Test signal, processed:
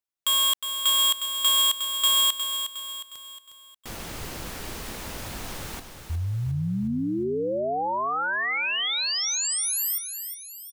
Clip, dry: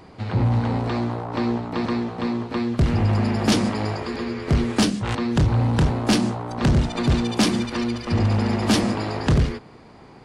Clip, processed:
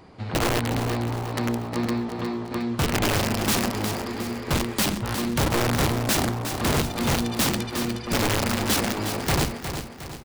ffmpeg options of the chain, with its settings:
-af "aeval=exprs='(mod(5.62*val(0)+1,2)-1)/5.62':c=same,aecho=1:1:360|720|1080|1440|1800:0.376|0.173|0.0795|0.0366|0.0168,volume=-3.5dB"

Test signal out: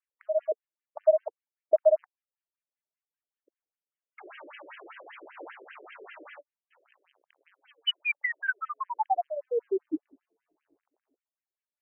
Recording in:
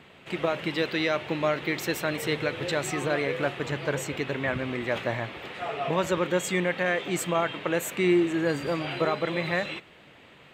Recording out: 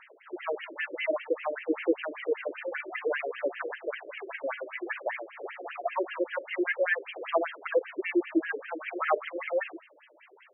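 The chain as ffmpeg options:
-af "aphaser=in_gain=1:out_gain=1:delay=3.5:decay=0.56:speed=0.55:type=sinusoidal,afftfilt=real='re*between(b*sr/1024,410*pow(2300/410,0.5+0.5*sin(2*PI*5.1*pts/sr))/1.41,410*pow(2300/410,0.5+0.5*sin(2*PI*5.1*pts/sr))*1.41)':imag='im*between(b*sr/1024,410*pow(2300/410,0.5+0.5*sin(2*PI*5.1*pts/sr))/1.41,410*pow(2300/410,0.5+0.5*sin(2*PI*5.1*pts/sr))*1.41)':win_size=1024:overlap=0.75"

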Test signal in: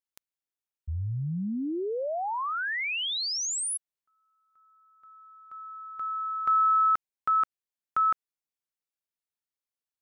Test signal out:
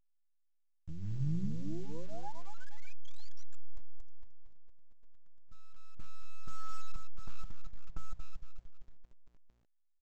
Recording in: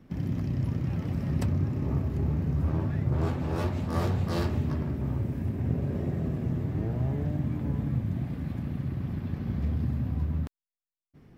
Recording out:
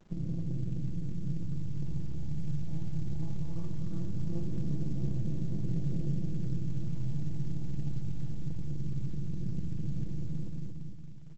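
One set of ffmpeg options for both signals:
-af "aeval=exprs='if(lt(val(0),0),0.251*val(0),val(0))':c=same,firequalizer=gain_entry='entry(120,0);entry(500,-11);entry(1500,-25);entry(4800,-27)':delay=0.05:min_phase=1,dynaudnorm=f=200:g=21:m=7dB,aphaser=in_gain=1:out_gain=1:delay=1.3:decay=0.52:speed=0.19:type=sinusoidal,aecho=1:1:229|458|687|916|1145|1374|1603:0.398|0.223|0.125|0.0699|0.0392|0.0219|0.0123,acompressor=threshold=-29dB:ratio=2.5:attack=7:release=42:knee=1:detection=peak,aecho=1:1:6:0.95,anlmdn=0.1,aeval=exprs='val(0)*gte(abs(val(0)),0.00299)':c=same,bandreject=f=60:t=h:w=6,bandreject=f=120:t=h:w=6,bandreject=f=180:t=h:w=6,bandreject=f=240:t=h:w=6,volume=-5.5dB" -ar 16000 -c:a pcm_alaw

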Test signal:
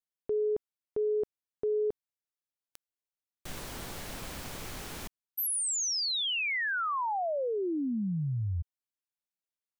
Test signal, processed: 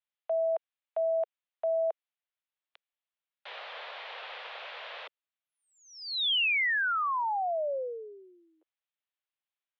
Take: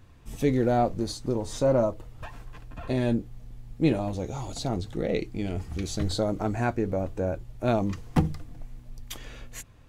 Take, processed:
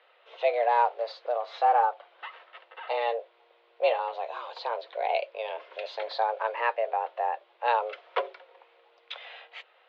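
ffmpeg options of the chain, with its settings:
-af "crystalizer=i=8.5:c=0,highpass=f=300:t=q:w=0.5412,highpass=f=300:t=q:w=1.307,lowpass=f=3.4k:t=q:w=0.5176,lowpass=f=3.4k:t=q:w=0.7071,lowpass=f=3.4k:t=q:w=1.932,afreqshift=230,aemphasis=mode=reproduction:type=riaa,volume=-1.5dB"

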